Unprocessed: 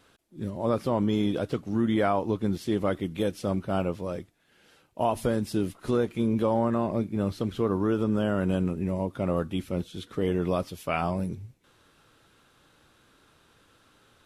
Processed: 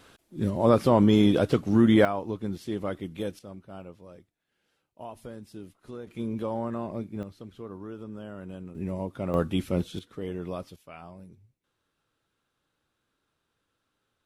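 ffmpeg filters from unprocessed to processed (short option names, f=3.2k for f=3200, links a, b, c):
-af "asetnsamples=n=441:p=0,asendcmd='2.05 volume volume -5dB;3.39 volume volume -15.5dB;6.07 volume volume -6.5dB;7.23 volume volume -14.5dB;8.75 volume volume -3.5dB;9.34 volume volume 3dB;9.99 volume volume -8dB;10.76 volume volume -17.5dB',volume=6dB"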